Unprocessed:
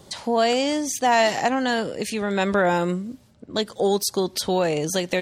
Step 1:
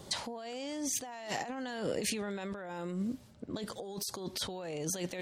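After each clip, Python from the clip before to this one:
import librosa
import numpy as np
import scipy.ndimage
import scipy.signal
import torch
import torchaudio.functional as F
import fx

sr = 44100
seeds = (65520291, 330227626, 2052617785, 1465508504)

y = fx.over_compress(x, sr, threshold_db=-30.0, ratio=-1.0)
y = y * 10.0 ** (-8.5 / 20.0)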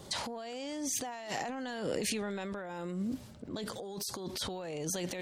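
y = fx.transient(x, sr, attack_db=-2, sustain_db=7)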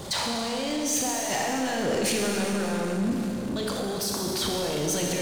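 y = fx.rev_schroeder(x, sr, rt60_s=3.0, comb_ms=27, drr_db=-0.5)
y = fx.power_curve(y, sr, exponent=0.7)
y = y * 10.0 ** (3.5 / 20.0)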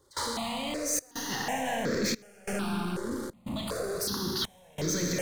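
y = fx.step_gate(x, sr, bpm=91, pattern='.xxxxx.xxxxxx.', floor_db=-24.0, edge_ms=4.5)
y = fx.phaser_held(y, sr, hz=2.7, low_hz=700.0, high_hz=2900.0)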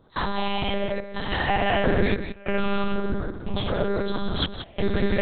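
y = x + 10.0 ** (-9.5 / 20.0) * np.pad(x, (int(176 * sr / 1000.0), 0))[:len(x)]
y = fx.lpc_monotone(y, sr, seeds[0], pitch_hz=200.0, order=8)
y = y * 10.0 ** (9.0 / 20.0)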